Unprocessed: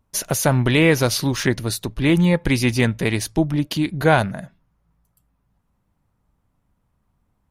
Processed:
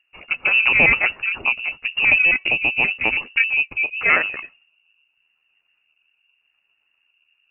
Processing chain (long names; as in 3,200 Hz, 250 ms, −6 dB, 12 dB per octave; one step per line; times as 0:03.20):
pitch shifter gated in a rhythm +7 semitones, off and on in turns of 66 ms
rotating-speaker cabinet horn 0.85 Hz
voice inversion scrambler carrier 2,800 Hz
level +2 dB